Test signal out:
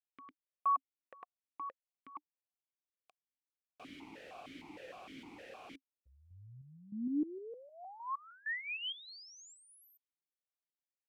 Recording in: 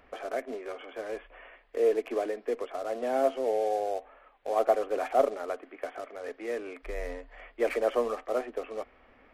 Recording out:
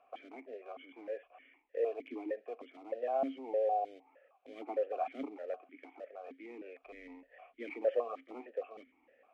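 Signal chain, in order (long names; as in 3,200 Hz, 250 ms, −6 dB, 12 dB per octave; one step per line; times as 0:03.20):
formant filter that steps through the vowels 6.5 Hz
level +1.5 dB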